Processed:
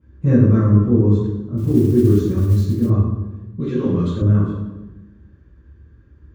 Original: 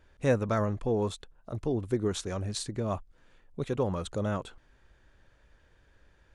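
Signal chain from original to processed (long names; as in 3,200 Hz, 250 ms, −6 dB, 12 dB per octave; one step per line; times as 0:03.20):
convolution reverb RT60 1.1 s, pre-delay 3 ms, DRR −14 dB
0:01.57–0:02.90: noise that follows the level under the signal 32 dB
0:03.60–0:04.22: meter weighting curve D
level −18 dB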